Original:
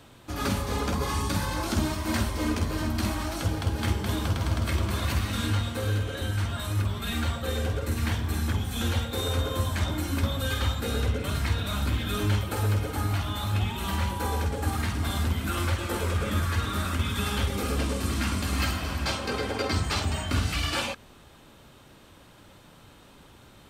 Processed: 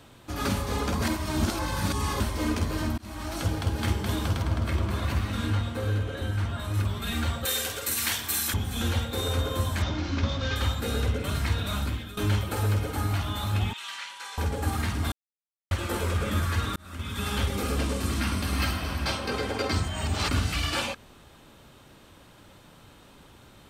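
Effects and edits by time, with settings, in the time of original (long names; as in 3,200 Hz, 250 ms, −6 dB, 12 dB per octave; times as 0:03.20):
0:01.02–0:02.20: reverse
0:02.98–0:03.38: fade in
0:04.42–0:06.74: high-shelf EQ 3,100 Hz −8 dB
0:07.45–0:08.54: spectral tilt +4.5 dB per octave
0:09.82–0:10.56: variable-slope delta modulation 32 kbit/s
0:11.76–0:12.17: fade out, to −17.5 dB
0:13.73–0:14.38: flat-topped band-pass 3,500 Hz, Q 0.59
0:15.12–0:15.71: silence
0:16.76–0:17.37: fade in
0:18.20–0:19.33: notch filter 7,100 Hz, Q 5.6
0:19.88–0:20.31: reverse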